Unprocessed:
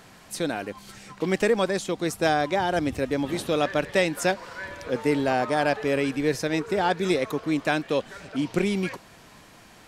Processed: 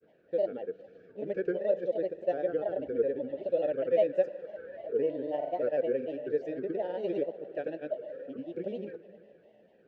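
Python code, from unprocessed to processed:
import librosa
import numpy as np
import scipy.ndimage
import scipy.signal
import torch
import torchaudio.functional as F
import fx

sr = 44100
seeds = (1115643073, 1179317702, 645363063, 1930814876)

y = fx.vowel_filter(x, sr, vowel='e')
y = fx.tilt_shelf(y, sr, db=9.5, hz=820.0)
y = fx.rev_schroeder(y, sr, rt60_s=2.5, comb_ms=32, drr_db=13.5)
y = fx.granulator(y, sr, seeds[0], grain_ms=100.0, per_s=20.0, spray_ms=100.0, spread_st=3)
y = scipy.signal.sosfilt(scipy.signal.butter(2, 5200.0, 'lowpass', fs=sr, output='sos'), y)
y = fx.peak_eq(y, sr, hz=2400.0, db=-3.0, octaves=0.44)
y = fx.notch(y, sr, hz=2100.0, q=7.4)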